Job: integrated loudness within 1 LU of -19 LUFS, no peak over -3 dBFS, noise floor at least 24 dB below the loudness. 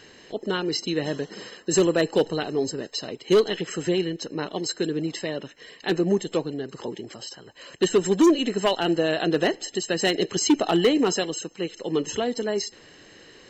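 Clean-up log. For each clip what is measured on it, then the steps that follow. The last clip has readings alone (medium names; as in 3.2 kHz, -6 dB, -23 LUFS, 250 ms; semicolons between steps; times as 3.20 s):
clipped samples 0.6%; clipping level -12.5 dBFS; loudness -24.5 LUFS; peak level -12.5 dBFS; loudness target -19.0 LUFS
-> clip repair -12.5 dBFS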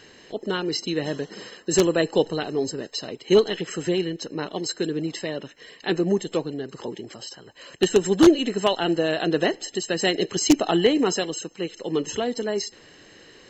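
clipped samples 0.0%; loudness -24.0 LUFS; peak level -3.5 dBFS; loudness target -19.0 LUFS
-> trim +5 dB; peak limiter -3 dBFS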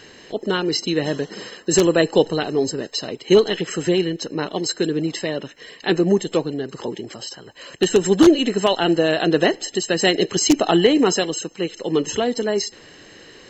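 loudness -19.5 LUFS; peak level -3.0 dBFS; noise floor -45 dBFS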